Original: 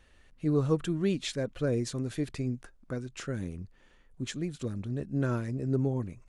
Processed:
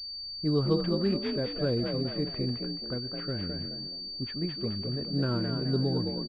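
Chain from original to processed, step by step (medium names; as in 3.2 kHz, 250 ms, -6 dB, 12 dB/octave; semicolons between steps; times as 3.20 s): frequency-shifting echo 213 ms, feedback 39%, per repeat +47 Hz, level -5.5 dB; level-controlled noise filter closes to 470 Hz, open at -27.5 dBFS; class-D stage that switches slowly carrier 4.6 kHz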